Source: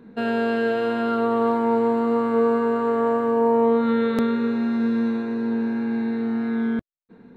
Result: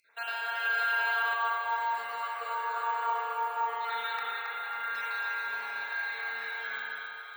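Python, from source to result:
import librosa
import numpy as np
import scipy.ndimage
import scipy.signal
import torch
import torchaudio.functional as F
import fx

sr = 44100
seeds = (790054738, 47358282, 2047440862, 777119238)

y = fx.spec_dropout(x, sr, seeds[0], share_pct=29)
y = fx.lowpass(y, sr, hz=2100.0, slope=12, at=(4.13, 4.95))
y = fx.dereverb_blind(y, sr, rt60_s=1.8)
y = scipy.signal.sosfilt(scipy.signal.butter(4, 790.0, 'highpass', fs=sr, output='sos'), y)
y = fx.tilt_eq(y, sr, slope=3.5)
y = fx.rider(y, sr, range_db=4, speed_s=0.5)
y = fx.echo_feedback(y, sr, ms=273, feedback_pct=59, wet_db=-5.5)
y = fx.rev_spring(y, sr, rt60_s=2.6, pass_ms=(31,), chirp_ms=75, drr_db=-5.0)
y = np.repeat(y[::2], 2)[:len(y)]
y = fx.env_flatten(y, sr, amount_pct=70, at=(0.65, 1.34))
y = y * librosa.db_to_amplitude(-3.5)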